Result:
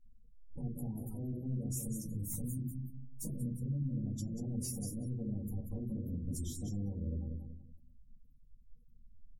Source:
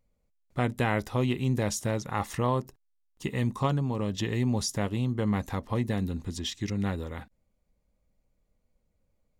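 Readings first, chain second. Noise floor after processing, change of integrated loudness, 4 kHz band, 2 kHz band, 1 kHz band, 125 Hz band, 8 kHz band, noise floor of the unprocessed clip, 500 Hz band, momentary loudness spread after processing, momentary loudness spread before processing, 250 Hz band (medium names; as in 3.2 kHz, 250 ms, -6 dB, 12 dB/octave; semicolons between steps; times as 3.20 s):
-61 dBFS, -10.0 dB, -20.0 dB, under -40 dB, under -30 dB, -8.0 dB, -5.5 dB, -75 dBFS, -19.0 dB, 7 LU, 7 LU, -9.0 dB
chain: spectral selection erased 1.68–4.34 s, 350–2600 Hz; compression 12:1, threshold -40 dBFS, peak gain reduction 18.5 dB; FFT filter 210 Hz 0 dB, 2 kHz -28 dB, 6.1 kHz -3 dB, 11 kHz +12 dB; feedback delay 188 ms, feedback 32%, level -6 dB; saturation -39.5 dBFS, distortion -15 dB; simulated room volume 170 m³, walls furnished, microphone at 2.1 m; spectral gate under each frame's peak -30 dB strong; attacks held to a fixed rise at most 200 dB/s; trim +2.5 dB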